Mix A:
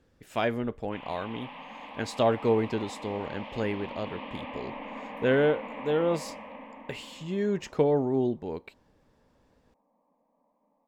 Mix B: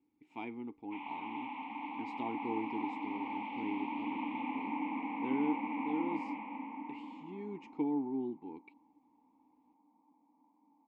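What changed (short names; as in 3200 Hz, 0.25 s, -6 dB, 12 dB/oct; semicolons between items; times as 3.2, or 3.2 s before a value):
background +12.0 dB; master: add vowel filter u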